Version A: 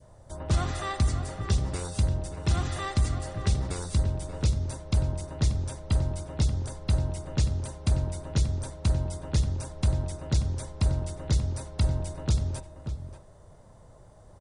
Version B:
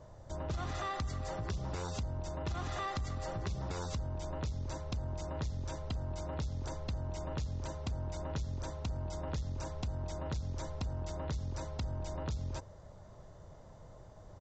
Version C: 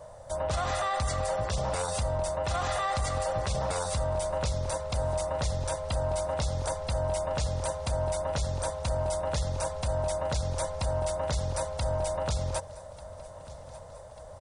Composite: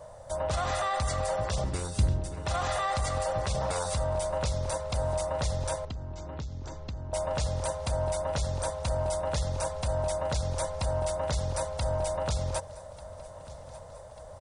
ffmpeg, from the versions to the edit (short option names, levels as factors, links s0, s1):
-filter_complex "[2:a]asplit=3[s0][s1][s2];[s0]atrim=end=1.642[s3];[0:a]atrim=start=1.638:end=2.462[s4];[s1]atrim=start=2.458:end=5.852[s5];[1:a]atrim=start=5.848:end=7.132[s6];[s2]atrim=start=7.128[s7];[s3][s4]acrossfade=d=0.004:c1=hsin:c2=hsin[s8];[s8][s5]acrossfade=d=0.004:c1=hsin:c2=hsin[s9];[s9][s6]acrossfade=d=0.004:c1=hsin:c2=hsin[s10];[s10][s7]acrossfade=d=0.004:c1=hsin:c2=hsin"